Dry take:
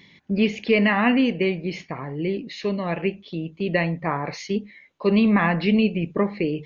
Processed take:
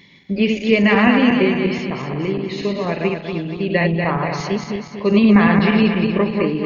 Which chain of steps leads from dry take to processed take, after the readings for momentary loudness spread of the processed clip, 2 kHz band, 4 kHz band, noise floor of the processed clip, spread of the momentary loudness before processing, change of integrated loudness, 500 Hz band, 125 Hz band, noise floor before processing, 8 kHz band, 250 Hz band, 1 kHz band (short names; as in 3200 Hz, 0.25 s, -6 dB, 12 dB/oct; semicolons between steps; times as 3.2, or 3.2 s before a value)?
11 LU, +5.5 dB, +5.5 dB, -36 dBFS, 11 LU, +5.5 dB, +5.5 dB, +6.0 dB, -53 dBFS, n/a, +6.0 dB, +5.0 dB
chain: regenerating reverse delay 0.119 s, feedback 69%, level -4 dB; ending taper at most 220 dB/s; gain +3 dB